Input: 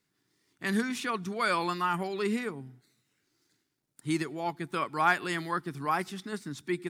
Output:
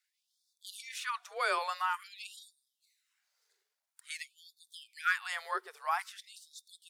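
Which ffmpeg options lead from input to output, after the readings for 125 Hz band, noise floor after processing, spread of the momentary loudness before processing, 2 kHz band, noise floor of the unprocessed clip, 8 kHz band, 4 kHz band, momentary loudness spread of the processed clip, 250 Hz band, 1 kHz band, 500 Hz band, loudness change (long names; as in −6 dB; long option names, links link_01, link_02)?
below −40 dB, below −85 dBFS, 11 LU, −3.5 dB, −79 dBFS, −3.0 dB, −3.0 dB, 20 LU, below −30 dB, −5.5 dB, −11.0 dB, −4.5 dB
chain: -af "afreqshift=25,afftfilt=real='re*gte(b*sr/1024,380*pow(3500/380,0.5+0.5*sin(2*PI*0.49*pts/sr)))':imag='im*gte(b*sr/1024,380*pow(3500/380,0.5+0.5*sin(2*PI*0.49*pts/sr)))':win_size=1024:overlap=0.75,volume=-3dB"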